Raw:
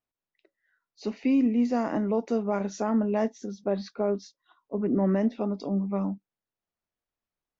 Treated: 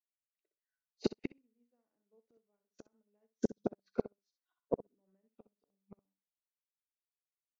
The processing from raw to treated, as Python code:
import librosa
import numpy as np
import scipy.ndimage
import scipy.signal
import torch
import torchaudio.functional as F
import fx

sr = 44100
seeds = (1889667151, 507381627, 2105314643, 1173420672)

p1 = fx.peak_eq(x, sr, hz=500.0, db=4.0, octaves=0.35)
p2 = fx.small_body(p1, sr, hz=(440.0, 1500.0, 3200.0), ring_ms=65, db=7)
p3 = fx.gate_flip(p2, sr, shuts_db=-23.0, range_db=-32)
p4 = p3 + fx.echo_feedback(p3, sr, ms=63, feedback_pct=19, wet_db=-7, dry=0)
p5 = fx.upward_expand(p4, sr, threshold_db=-57.0, expansion=2.5)
y = p5 * librosa.db_to_amplitude(6.5)